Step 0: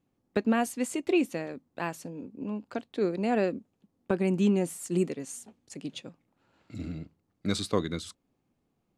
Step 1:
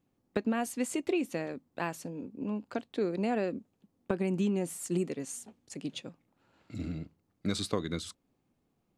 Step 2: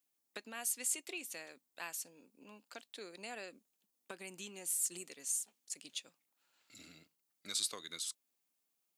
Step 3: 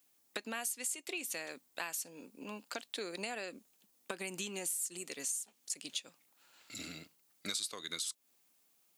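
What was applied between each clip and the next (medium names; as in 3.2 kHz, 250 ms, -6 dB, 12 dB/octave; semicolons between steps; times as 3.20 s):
compression, threshold -26 dBFS, peak gain reduction 6.5 dB
differentiator; trim +5 dB
compression 5:1, threshold -48 dBFS, peak gain reduction 15.5 dB; trim +11.5 dB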